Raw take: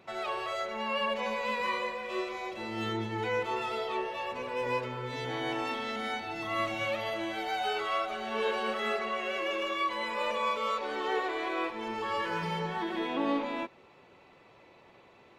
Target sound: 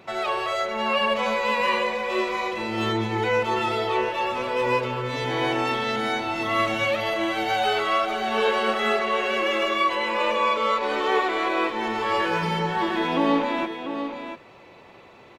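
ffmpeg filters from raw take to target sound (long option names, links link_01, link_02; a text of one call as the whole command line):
ffmpeg -i in.wav -filter_complex "[0:a]asettb=1/sr,asplit=3[link_01][link_02][link_03];[link_01]atrim=end=9.954[link_04];[link_02]atrim=start=9.95:end=10.83,asetpts=PTS-STARTPTS,afade=type=in:duration=0.004:curve=qsin,afade=type=out:start_time=0.876:duration=0.004:curve=qsin,highshelf=frequency=6800:gain=-8.5[link_05];[link_03]atrim=start=10.826[link_06];[link_04][link_05]acrossfade=duration=0.004:curve1=hsin:curve2=qsin[link_07];[link_07][link_06]acrossfade=duration=0.004:curve1=qsin:curve2=hsin,asplit=2[link_08][link_09];[link_09]aecho=0:1:694:0.376[link_10];[link_08][link_10]amix=inputs=2:normalize=0,volume=8.5dB" out.wav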